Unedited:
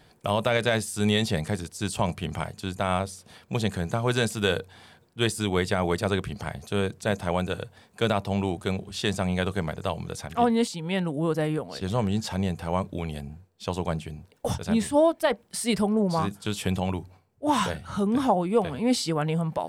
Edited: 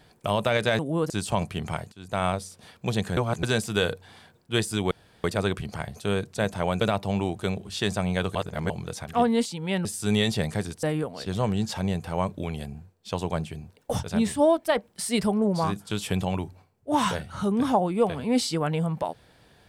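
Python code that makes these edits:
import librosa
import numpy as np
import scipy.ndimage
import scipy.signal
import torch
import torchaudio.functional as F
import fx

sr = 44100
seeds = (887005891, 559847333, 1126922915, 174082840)

y = fx.edit(x, sr, fx.swap(start_s=0.79, length_s=0.98, other_s=11.07, other_length_s=0.31),
    fx.fade_in_from(start_s=2.59, length_s=0.25, curve='qua', floor_db=-17.5),
    fx.reverse_span(start_s=3.84, length_s=0.26),
    fx.room_tone_fill(start_s=5.58, length_s=0.33),
    fx.cut(start_s=7.48, length_s=0.55),
    fx.reverse_span(start_s=9.57, length_s=0.35), tone=tone)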